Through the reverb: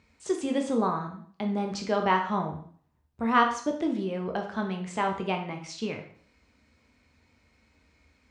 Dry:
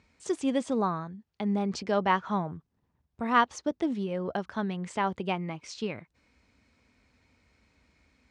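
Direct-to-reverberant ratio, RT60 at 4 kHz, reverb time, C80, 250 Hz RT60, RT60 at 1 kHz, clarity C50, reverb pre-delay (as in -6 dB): 3.0 dB, 0.50 s, 0.50 s, 12.0 dB, 0.50 s, 0.50 s, 8.0 dB, 7 ms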